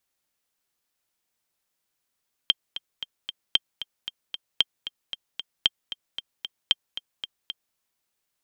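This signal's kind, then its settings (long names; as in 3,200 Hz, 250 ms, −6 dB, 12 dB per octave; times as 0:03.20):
click track 228 BPM, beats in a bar 4, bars 5, 3,170 Hz, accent 13.5 dB −5 dBFS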